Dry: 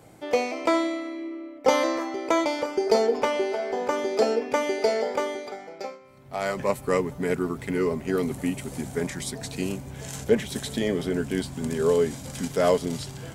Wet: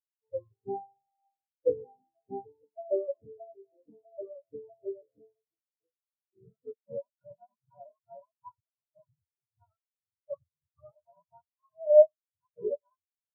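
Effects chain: spectrum mirrored in octaves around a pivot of 510 Hz; echo 98 ms -17.5 dB; spectral expander 4:1

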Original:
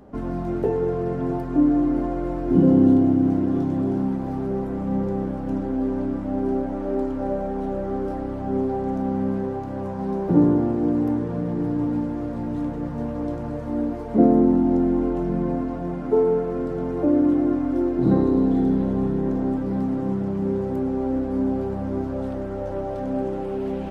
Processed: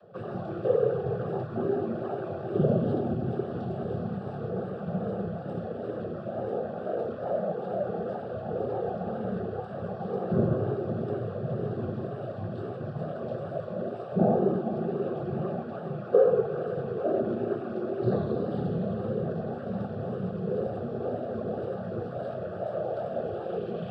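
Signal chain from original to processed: noise vocoder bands 16; wow and flutter 94 cents; fixed phaser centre 1400 Hz, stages 8

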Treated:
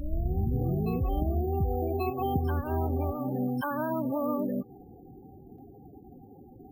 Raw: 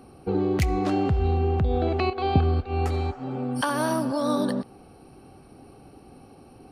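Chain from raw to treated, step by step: tape start at the beginning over 1.54 s; compressor 3:1, threshold -27 dBFS, peak gain reduction 9.5 dB; loudest bins only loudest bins 16; on a send: reverse echo 1.135 s -6.5 dB; on the sum: careless resampling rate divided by 3×, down none, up hold

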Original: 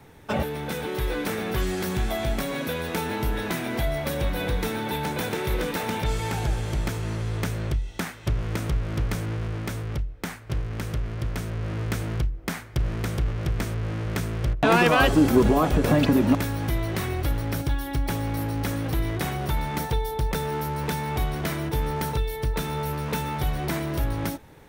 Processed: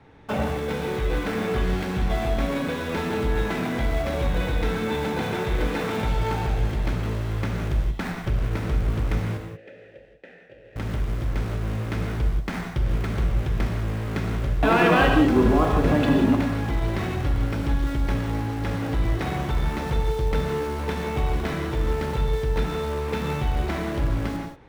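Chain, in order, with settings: LPF 3500 Hz 12 dB/oct; in parallel at -11 dB: Schmitt trigger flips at -35.5 dBFS; 9.37–10.76 on the sum: vowel filter e; non-linear reverb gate 0.21 s flat, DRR 1.5 dB; gain -2.5 dB

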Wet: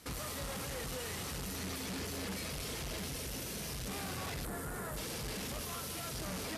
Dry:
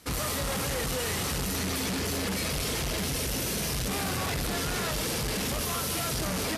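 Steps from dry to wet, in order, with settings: 4.45–4.97 band shelf 3800 Hz -12.5 dB; limiter -33 dBFS, peak gain reduction 9.5 dB; gain -2.5 dB

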